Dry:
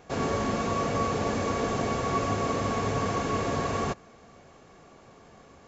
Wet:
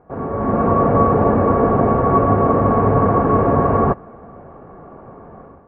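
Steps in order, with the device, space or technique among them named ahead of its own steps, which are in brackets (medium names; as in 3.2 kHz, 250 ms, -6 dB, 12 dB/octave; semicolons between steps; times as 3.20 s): action camera in a waterproof case (low-pass 1.3 kHz 24 dB/octave; level rider gain up to 12.5 dB; trim +2 dB; AAC 48 kbps 48 kHz)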